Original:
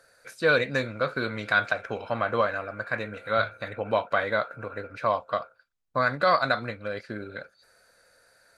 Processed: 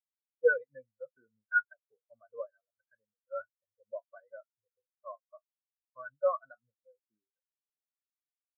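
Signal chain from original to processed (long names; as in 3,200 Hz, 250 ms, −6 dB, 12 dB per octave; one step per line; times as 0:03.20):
low-shelf EQ 91 Hz +2 dB
every bin expanded away from the loudest bin 4 to 1
level −4.5 dB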